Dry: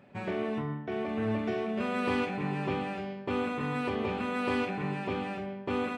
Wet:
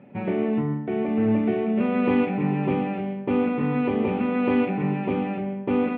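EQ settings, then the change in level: cabinet simulation 200–2800 Hz, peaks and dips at 400 Hz -4 dB, 650 Hz -6 dB, 1.1 kHz -8 dB, 1.6 kHz -8 dB; tilt EQ -2.5 dB/octave; +8.0 dB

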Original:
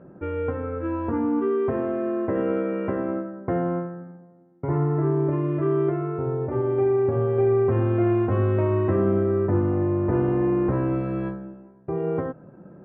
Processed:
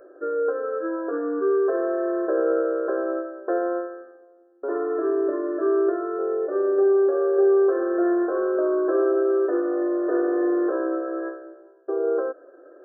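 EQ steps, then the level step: brick-wall FIR band-pass 260–1800 Hz; static phaser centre 900 Hz, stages 6; +5.0 dB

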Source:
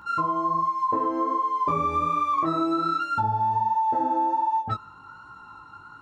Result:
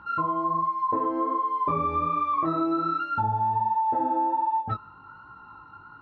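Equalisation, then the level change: distance through air 290 m; 0.0 dB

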